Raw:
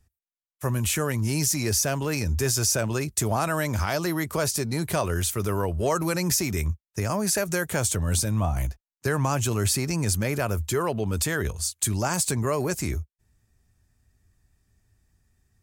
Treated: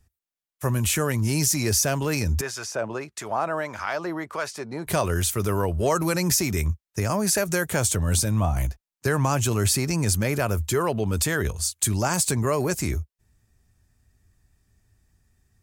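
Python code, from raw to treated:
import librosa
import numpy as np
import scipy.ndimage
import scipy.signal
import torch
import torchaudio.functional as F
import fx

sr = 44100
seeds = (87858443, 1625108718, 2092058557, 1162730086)

y = fx.filter_lfo_bandpass(x, sr, shape='sine', hz=1.6, low_hz=650.0, high_hz=1600.0, q=0.83, at=(2.41, 4.87))
y = y * 10.0 ** (2.0 / 20.0)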